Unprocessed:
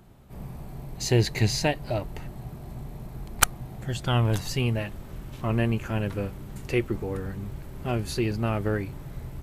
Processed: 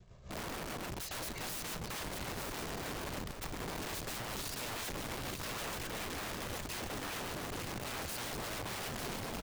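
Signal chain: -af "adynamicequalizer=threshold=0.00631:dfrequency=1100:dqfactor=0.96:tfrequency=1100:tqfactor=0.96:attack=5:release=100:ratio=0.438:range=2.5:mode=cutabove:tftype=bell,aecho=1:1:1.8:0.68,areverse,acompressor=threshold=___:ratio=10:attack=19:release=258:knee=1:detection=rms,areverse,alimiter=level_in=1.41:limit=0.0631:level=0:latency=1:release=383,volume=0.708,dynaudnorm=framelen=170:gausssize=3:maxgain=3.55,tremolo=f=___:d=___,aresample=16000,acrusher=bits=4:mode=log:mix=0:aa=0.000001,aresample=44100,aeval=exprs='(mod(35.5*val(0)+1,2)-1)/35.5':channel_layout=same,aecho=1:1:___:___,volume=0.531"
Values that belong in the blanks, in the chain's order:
0.0251, 7, 0.57, 899, 0.447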